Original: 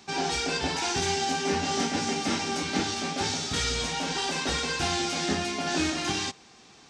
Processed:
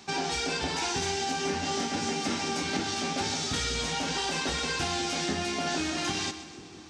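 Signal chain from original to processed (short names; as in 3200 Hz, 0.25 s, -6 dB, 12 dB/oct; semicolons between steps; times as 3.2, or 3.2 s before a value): compressor, threshold -29 dBFS, peak gain reduction 7 dB; on a send: split-band echo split 470 Hz, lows 0.492 s, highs 0.129 s, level -13 dB; on the sum: gain +2 dB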